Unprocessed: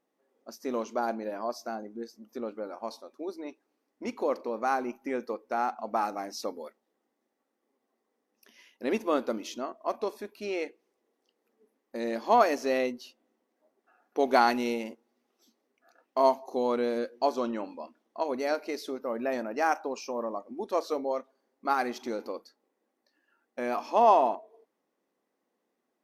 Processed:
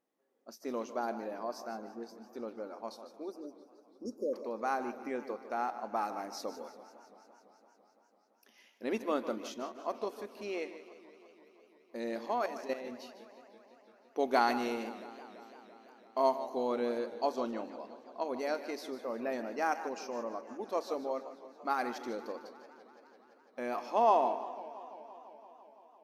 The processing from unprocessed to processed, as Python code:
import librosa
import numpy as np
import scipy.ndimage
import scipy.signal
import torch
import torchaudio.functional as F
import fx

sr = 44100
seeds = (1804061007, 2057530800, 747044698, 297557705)

p1 = fx.spec_erase(x, sr, start_s=3.32, length_s=1.02, low_hz=610.0, high_hz=4700.0)
p2 = fx.level_steps(p1, sr, step_db=13, at=(12.26, 12.92))
p3 = p2 + fx.echo_feedback(p2, sr, ms=150, feedback_pct=28, wet_db=-13, dry=0)
p4 = fx.echo_warbled(p3, sr, ms=169, feedback_pct=79, rate_hz=2.8, cents=208, wet_db=-18.0)
y = p4 * 10.0 ** (-5.5 / 20.0)